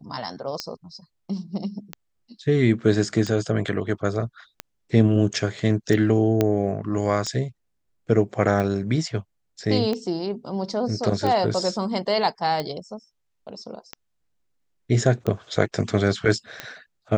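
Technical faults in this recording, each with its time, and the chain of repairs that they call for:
tick 45 rpm -14 dBFS
6.41 pop -7 dBFS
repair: de-click

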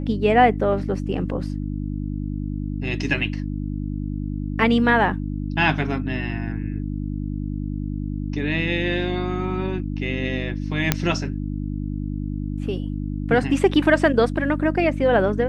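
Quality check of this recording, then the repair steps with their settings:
hum 50 Hz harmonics 6 -27 dBFS
10.92 pop -1 dBFS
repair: de-click; de-hum 50 Hz, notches 6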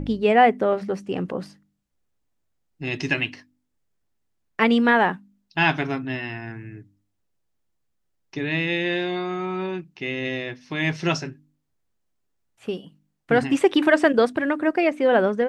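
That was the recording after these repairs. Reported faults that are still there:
none

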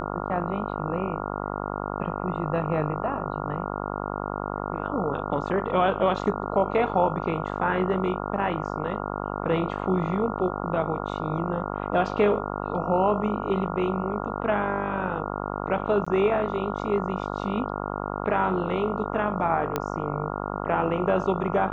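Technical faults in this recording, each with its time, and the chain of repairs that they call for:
buzz 50 Hz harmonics 28 -31 dBFS
16.05–16.07 gap 15 ms
19.76 pop -11 dBFS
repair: de-click; de-hum 50 Hz, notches 28; interpolate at 16.05, 15 ms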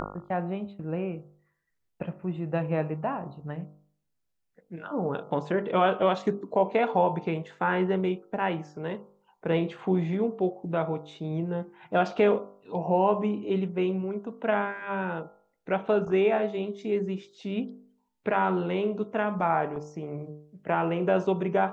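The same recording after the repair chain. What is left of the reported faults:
none

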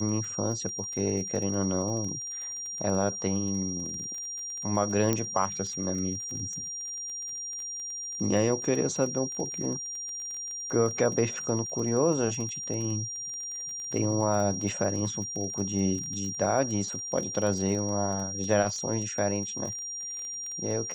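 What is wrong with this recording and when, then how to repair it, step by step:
crackle 26/s -34 dBFS
tone 5700 Hz -34 dBFS
5.13 pop -12 dBFS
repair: de-click; notch 5700 Hz, Q 30

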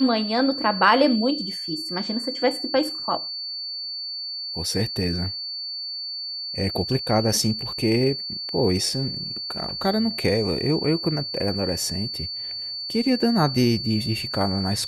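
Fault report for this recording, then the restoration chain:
tone 4500 Hz -29 dBFS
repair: notch 4500 Hz, Q 30

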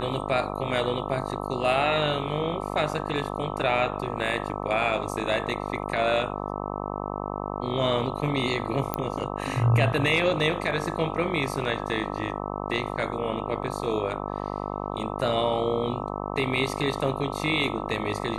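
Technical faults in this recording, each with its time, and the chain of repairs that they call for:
buzz 50 Hz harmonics 26 -32 dBFS
8.94 pop -11 dBFS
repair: de-click; de-hum 50 Hz, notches 26

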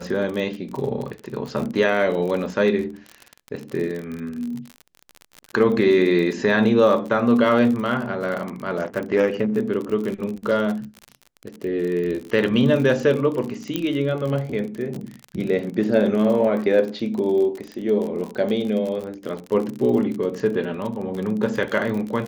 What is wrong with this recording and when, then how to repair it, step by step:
crackle 44/s -27 dBFS
13.76 pop -10 dBFS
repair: de-click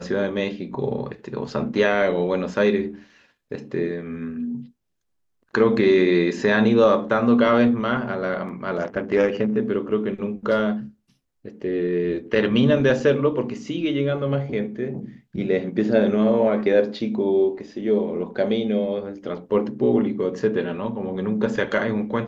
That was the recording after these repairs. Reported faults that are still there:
none

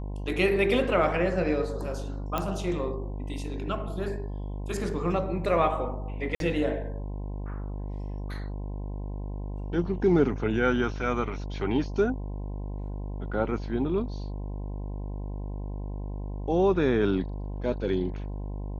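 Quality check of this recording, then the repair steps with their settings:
buzz 50 Hz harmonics 21 -34 dBFS
2.38 pop -14 dBFS
6.35–6.4 gap 52 ms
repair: de-click; de-hum 50 Hz, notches 21; interpolate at 6.35, 52 ms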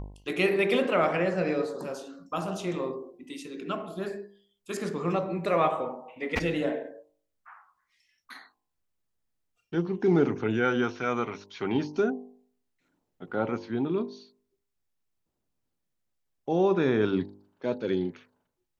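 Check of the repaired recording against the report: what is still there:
none

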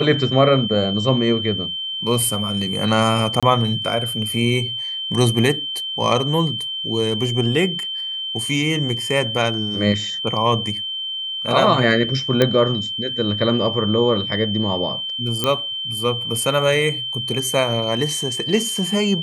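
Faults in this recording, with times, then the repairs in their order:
tone 3100 Hz -24 dBFS
3.4–3.43 gap 26 ms
12.42 pop -3 dBFS
15.44 pop -5 dBFS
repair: de-click; notch 3100 Hz, Q 30; interpolate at 3.4, 26 ms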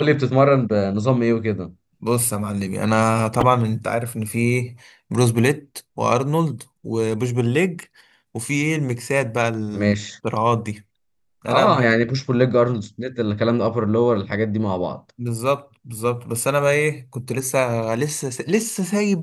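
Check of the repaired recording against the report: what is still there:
none

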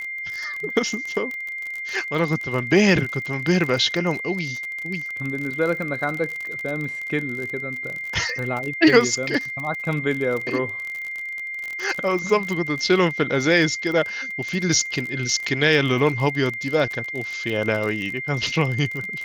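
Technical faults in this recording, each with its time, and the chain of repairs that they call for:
crackle 37/s -26 dBFS
tone 2100 Hz -28 dBFS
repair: de-click; notch 2100 Hz, Q 30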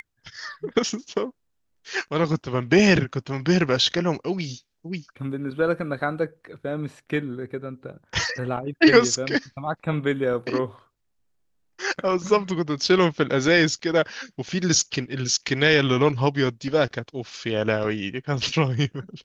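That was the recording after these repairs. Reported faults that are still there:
none

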